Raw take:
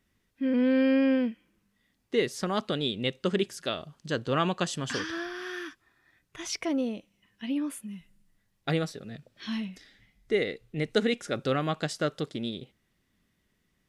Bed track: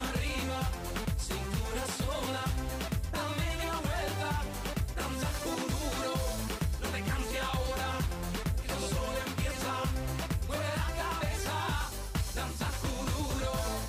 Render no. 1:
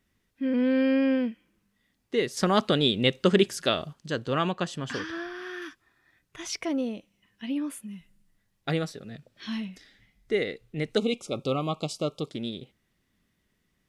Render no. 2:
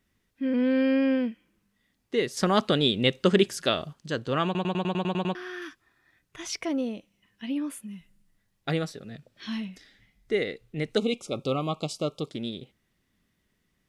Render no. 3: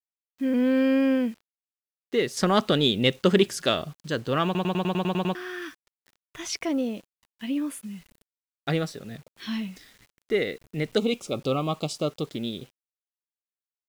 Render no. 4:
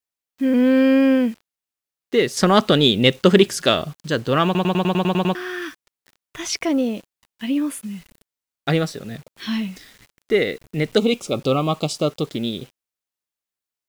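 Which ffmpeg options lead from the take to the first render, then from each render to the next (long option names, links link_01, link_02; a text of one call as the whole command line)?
ffmpeg -i in.wav -filter_complex "[0:a]asettb=1/sr,asplit=3[link_01][link_02][link_03];[link_01]atrim=end=4.514[link_04];[link_02]atrim=start=4.51:end=5.62,asetpts=PTS-STARTPTS,afade=type=in:duration=0.004:curve=qsin,afade=type=out:start_time=1.106:duration=0.004:curve=qsin,equalizer=frequency=8800:width_type=o:width=2.1:gain=-7.5[link_05];[link_03]atrim=start=5.616[link_06];[link_04][link_05]acrossfade=duration=0.004:curve1=hsin:curve2=qsin[link_07];[link_07][link_06]acrossfade=duration=0.004:curve1=qsin:curve2=hsin,asettb=1/sr,asplit=3[link_08][link_09][link_10];[link_08]atrim=end=10.974[link_11];[link_09]atrim=start=10.97:end=12.31,asetpts=PTS-STARTPTS,afade=type=in:duration=0.004:curve=qsin,afade=type=out:start_time=1.336:duration=0.004:curve=qsin,asuperstop=centerf=1700:order=12:qfactor=1.9[link_12];[link_10]atrim=start=12.306[link_13];[link_11][link_12]acrossfade=duration=0.004:curve1=hsin:curve2=qsin[link_14];[link_14][link_13]acrossfade=duration=0.004:curve1=qsin:curve2=hsin,asplit=3[link_15][link_16][link_17];[link_15]atrim=end=2.372[link_18];[link_16]atrim=start=2.368:end=3.932,asetpts=PTS-STARTPTS,volume=6.5dB[link_19];[link_17]atrim=start=3.928[link_20];[link_18][link_19]acrossfade=duration=0.004:curve1=hsin:curve2=hsin[link_21];[link_21][link_20]acrossfade=duration=0.004:curve1=hsin:curve2=hsin" out.wav
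ffmpeg -i in.wav -filter_complex "[0:a]asplit=10[link_01][link_02][link_03][link_04][link_05][link_06][link_07][link_08][link_09][link_10];[link_01]atrim=end=4.552[link_11];[link_02]atrim=start=4.448:end=4.552[link_12];[link_03]atrim=start=4.448:end=4.552[link_13];[link_04]atrim=start=4.448:end=4.552[link_14];[link_05]atrim=start=4.448:end=4.552[link_15];[link_06]atrim=start=4.448:end=4.552[link_16];[link_07]atrim=start=4.448:end=4.552[link_17];[link_08]atrim=start=4.448:end=4.552[link_18];[link_09]atrim=start=4.448:end=4.552[link_19];[link_10]atrim=start=5.348[link_20];[link_11][link_12]acrossfade=duration=0.004:curve1=hsin:curve2=hsin[link_21];[link_21][link_13]acrossfade=duration=0.004:curve1=hsin:curve2=hsin[link_22];[link_22][link_14]acrossfade=duration=0.004:curve1=hsin:curve2=hsin[link_23];[link_23][link_15]acrossfade=duration=0.004:curve1=hsin:curve2=hsin[link_24];[link_24][link_16]acrossfade=duration=0.004:curve1=hsin:curve2=hsin[link_25];[link_25][link_17]acrossfade=duration=0.004:curve1=hsin:curve2=hsin[link_26];[link_26][link_18]acrossfade=duration=0.004:curve1=hsin:curve2=hsin[link_27];[link_27][link_19]acrossfade=duration=0.004:curve1=hsin:curve2=hsin[link_28];[link_28][link_20]acrossfade=duration=0.004:curve1=hsin:curve2=hsin" out.wav
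ffmpeg -i in.wav -filter_complex "[0:a]asplit=2[link_01][link_02];[link_02]asoftclip=type=tanh:threshold=-22dB,volume=-10dB[link_03];[link_01][link_03]amix=inputs=2:normalize=0,acrusher=bits=8:mix=0:aa=0.000001" out.wav
ffmpeg -i in.wav -af "volume=6.5dB,alimiter=limit=-1dB:level=0:latency=1" out.wav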